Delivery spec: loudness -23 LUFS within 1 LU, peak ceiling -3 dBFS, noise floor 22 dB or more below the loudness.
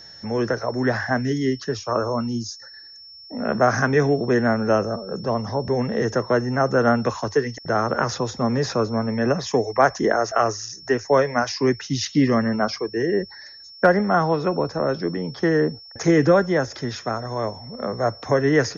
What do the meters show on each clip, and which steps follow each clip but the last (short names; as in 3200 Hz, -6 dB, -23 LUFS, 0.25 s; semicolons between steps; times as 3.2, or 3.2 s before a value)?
steady tone 5400 Hz; tone level -41 dBFS; loudness -22.0 LUFS; peak -4.5 dBFS; loudness target -23.0 LUFS
-> notch 5400 Hz, Q 30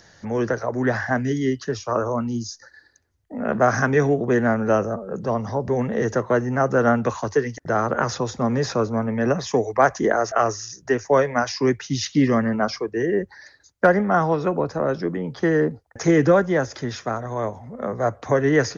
steady tone none; loudness -22.0 LUFS; peak -4.5 dBFS; loudness target -23.0 LUFS
-> gain -1 dB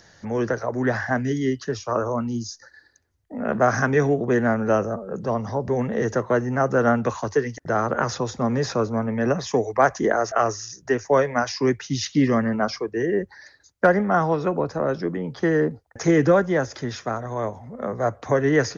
loudness -23.0 LUFS; peak -5.5 dBFS; noise floor -56 dBFS